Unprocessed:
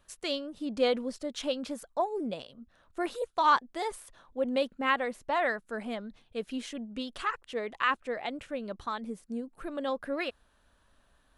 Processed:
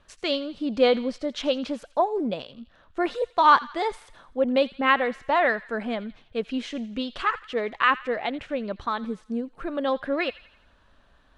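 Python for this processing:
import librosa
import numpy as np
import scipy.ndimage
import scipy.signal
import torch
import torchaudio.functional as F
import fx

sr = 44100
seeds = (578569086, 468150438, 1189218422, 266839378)

p1 = scipy.signal.sosfilt(scipy.signal.butter(2, 4500.0, 'lowpass', fs=sr, output='sos'), x)
p2 = p1 + fx.echo_wet_highpass(p1, sr, ms=84, feedback_pct=49, hz=1500.0, wet_db=-16, dry=0)
y = p2 * librosa.db_to_amplitude(7.0)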